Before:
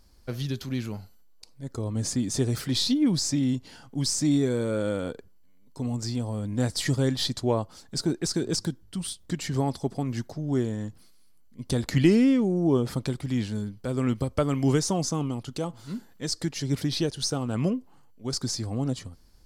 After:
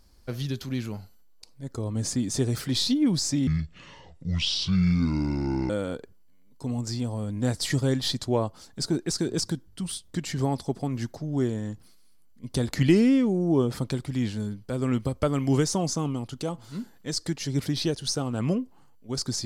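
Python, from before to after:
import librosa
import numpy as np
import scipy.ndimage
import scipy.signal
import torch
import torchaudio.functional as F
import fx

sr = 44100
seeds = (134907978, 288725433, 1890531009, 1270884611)

y = fx.edit(x, sr, fx.speed_span(start_s=3.47, length_s=1.38, speed=0.62), tone=tone)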